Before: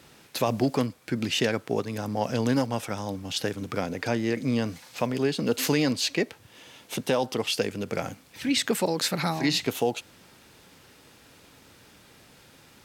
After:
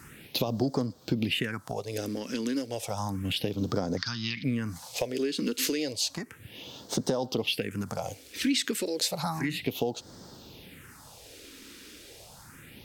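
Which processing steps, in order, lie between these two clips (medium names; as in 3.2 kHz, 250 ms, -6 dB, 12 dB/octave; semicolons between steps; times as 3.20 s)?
3.97–4.44 s: FFT filter 190 Hz 0 dB, 560 Hz -29 dB, 1.2 kHz +12 dB, 5.4 kHz +14 dB, 8.3 kHz -11 dB; compression 10:1, threshold -31 dBFS, peak gain reduction 15 dB; phase shifter stages 4, 0.32 Hz, lowest notch 120–2500 Hz; trim +7 dB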